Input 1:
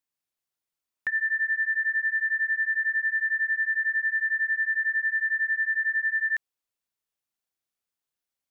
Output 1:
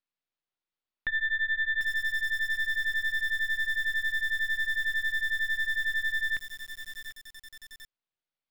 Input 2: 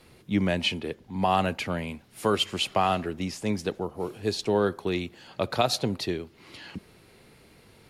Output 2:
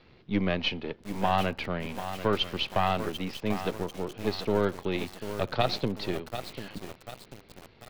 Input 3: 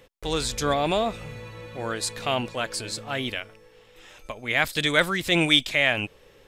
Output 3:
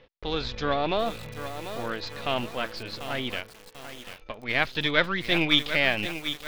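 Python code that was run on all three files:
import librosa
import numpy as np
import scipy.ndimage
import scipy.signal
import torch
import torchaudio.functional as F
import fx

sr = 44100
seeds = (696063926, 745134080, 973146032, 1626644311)

y = np.where(x < 0.0, 10.0 ** (-7.0 / 20.0) * x, x)
y = scipy.signal.sosfilt(scipy.signal.cheby2(4, 40, 8400.0, 'lowpass', fs=sr, output='sos'), y)
y = fx.echo_crushed(y, sr, ms=742, feedback_pct=55, bits=6, wet_db=-9)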